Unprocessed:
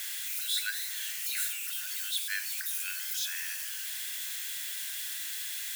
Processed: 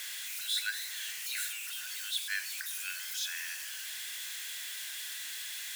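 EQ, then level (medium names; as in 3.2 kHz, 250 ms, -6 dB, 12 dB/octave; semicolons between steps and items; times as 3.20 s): treble shelf 10 kHz -8.5 dB; 0.0 dB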